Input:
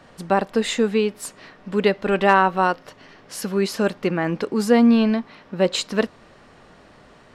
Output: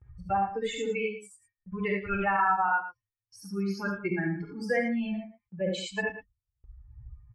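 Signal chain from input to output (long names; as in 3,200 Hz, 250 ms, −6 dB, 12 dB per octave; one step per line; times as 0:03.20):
spectral dynamics exaggerated over time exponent 3
parametric band 420 Hz −13.5 dB 0.71 octaves
upward compression, threshold −28 dBFS
low-pass that shuts in the quiet parts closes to 2,300 Hz, open at −24.5 dBFS
reverb whose tail is shaped and stops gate 100 ms rising, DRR 0 dB
brickwall limiter −19.5 dBFS, peak gain reduction 16 dB
high shelf with overshoot 2,800 Hz −9.5 dB, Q 1.5
single-tap delay 112 ms −12.5 dB
noise gate with hold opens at −53 dBFS
comb filter 2.3 ms, depth 58%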